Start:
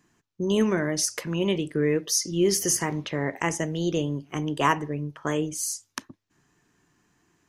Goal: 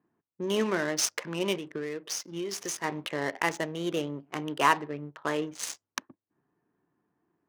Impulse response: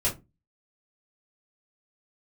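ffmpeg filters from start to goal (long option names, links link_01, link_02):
-filter_complex "[0:a]adynamicsmooth=sensitivity=7:basefreq=720,highpass=frequency=560:poles=1,asplit=3[link_01][link_02][link_03];[link_01]afade=type=out:start_time=1.57:duration=0.02[link_04];[link_02]acompressor=threshold=-33dB:ratio=6,afade=type=in:start_time=1.57:duration=0.02,afade=type=out:start_time=2.83:duration=0.02[link_05];[link_03]afade=type=in:start_time=2.83:duration=0.02[link_06];[link_04][link_05][link_06]amix=inputs=3:normalize=0,volume=1dB"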